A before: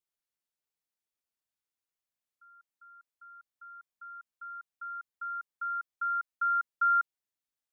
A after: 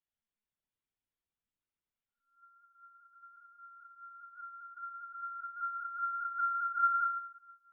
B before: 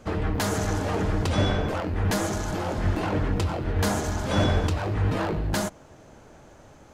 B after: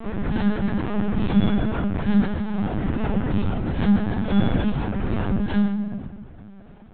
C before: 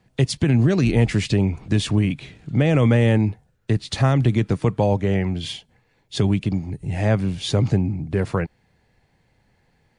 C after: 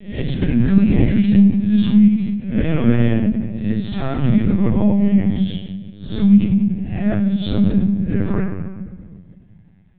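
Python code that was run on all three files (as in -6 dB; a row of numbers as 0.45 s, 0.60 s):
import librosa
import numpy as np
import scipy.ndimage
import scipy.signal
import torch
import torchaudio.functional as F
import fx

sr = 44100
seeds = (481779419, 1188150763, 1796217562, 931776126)

y = fx.spec_swells(x, sr, rise_s=0.46)
y = fx.peak_eq(y, sr, hz=200.0, db=13.0, octaves=0.35)
y = fx.room_shoebox(y, sr, seeds[0], volume_m3=1600.0, walls='mixed', distance_m=1.7)
y = fx.lpc_vocoder(y, sr, seeds[1], excitation='pitch_kept', order=16)
y = y * librosa.db_to_amplitude(-6.0)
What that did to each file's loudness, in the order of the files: -3.0 LU, +3.0 LU, +4.0 LU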